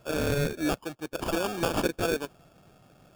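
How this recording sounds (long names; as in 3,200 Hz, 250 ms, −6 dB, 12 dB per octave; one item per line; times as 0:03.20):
aliases and images of a low sample rate 2,000 Hz, jitter 0%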